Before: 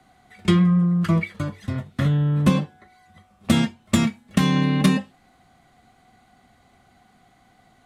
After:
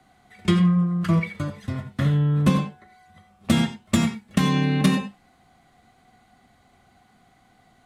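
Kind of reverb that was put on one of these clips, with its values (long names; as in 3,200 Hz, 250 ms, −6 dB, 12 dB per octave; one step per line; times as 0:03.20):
reverb whose tail is shaped and stops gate 110 ms rising, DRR 9.5 dB
level −1.5 dB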